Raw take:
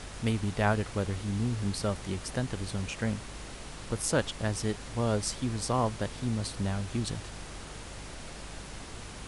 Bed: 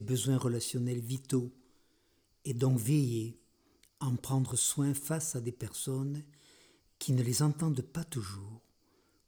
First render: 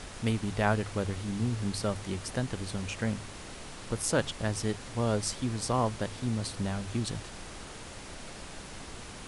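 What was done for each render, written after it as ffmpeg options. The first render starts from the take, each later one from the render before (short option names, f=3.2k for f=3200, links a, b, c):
-af "bandreject=f=50:t=h:w=4,bandreject=f=100:t=h:w=4,bandreject=f=150:t=h:w=4"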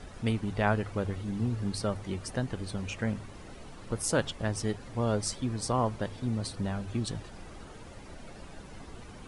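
-af "afftdn=nr=11:nf=-45"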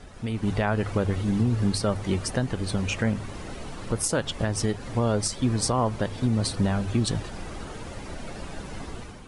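-af "alimiter=limit=-23dB:level=0:latency=1:release=198,dynaudnorm=f=150:g=5:m=9.5dB"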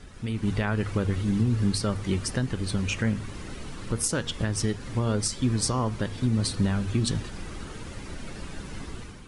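-af "equalizer=f=690:w=1.4:g=-8,bandreject=f=236.6:t=h:w=4,bandreject=f=473.2:t=h:w=4,bandreject=f=709.8:t=h:w=4,bandreject=f=946.4:t=h:w=4,bandreject=f=1.183k:t=h:w=4,bandreject=f=1.4196k:t=h:w=4,bandreject=f=1.6562k:t=h:w=4,bandreject=f=1.8928k:t=h:w=4,bandreject=f=2.1294k:t=h:w=4,bandreject=f=2.366k:t=h:w=4,bandreject=f=2.6026k:t=h:w=4,bandreject=f=2.8392k:t=h:w=4,bandreject=f=3.0758k:t=h:w=4,bandreject=f=3.3124k:t=h:w=4,bandreject=f=3.549k:t=h:w=4,bandreject=f=3.7856k:t=h:w=4,bandreject=f=4.0222k:t=h:w=4,bandreject=f=4.2588k:t=h:w=4,bandreject=f=4.4954k:t=h:w=4,bandreject=f=4.732k:t=h:w=4,bandreject=f=4.9686k:t=h:w=4,bandreject=f=5.2052k:t=h:w=4,bandreject=f=5.4418k:t=h:w=4,bandreject=f=5.6784k:t=h:w=4,bandreject=f=5.915k:t=h:w=4,bandreject=f=6.1516k:t=h:w=4,bandreject=f=6.3882k:t=h:w=4,bandreject=f=6.6248k:t=h:w=4,bandreject=f=6.8614k:t=h:w=4,bandreject=f=7.098k:t=h:w=4,bandreject=f=7.3346k:t=h:w=4"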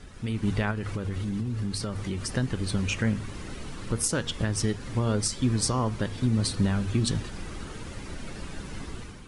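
-filter_complex "[0:a]asettb=1/sr,asplit=3[a][b][c];[a]atrim=end=0.714[d];[b]atrim=start=0.71:end=2.32,asetpts=PTS-STARTPTS,afade=t=in:d=0.004:c=qsin,afade=t=out:st=1.606:d=0.004:c=qsin,acompressor=threshold=-27dB:ratio=4:attack=3.2:release=140:knee=1:detection=peak[e];[c]atrim=start=2.316[f];[d][e]acrossfade=d=0.004:c1=hsin:c2=qsin[g];[g][f]acrossfade=d=0.004:c1=qsin:c2=hsin"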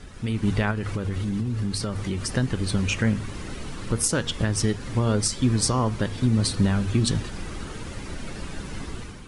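-af "volume=3.5dB"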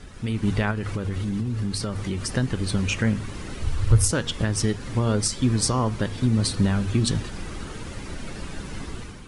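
-filter_complex "[0:a]asettb=1/sr,asplit=3[a][b][c];[a]atrim=end=3.624[d];[b]atrim=start=3.62:end=4.11,asetpts=PTS-STARTPTS,afade=t=in:d=0.004:c=qsin,afade=t=out:st=0.486:d=0.004:c=qsin,lowshelf=f=130:t=q:w=3:g=11[e];[c]atrim=start=4.106[f];[d][e]acrossfade=d=0.004:c1=hsin:c2=qsin[g];[g][f]acrossfade=d=0.004:c1=qsin:c2=hsin"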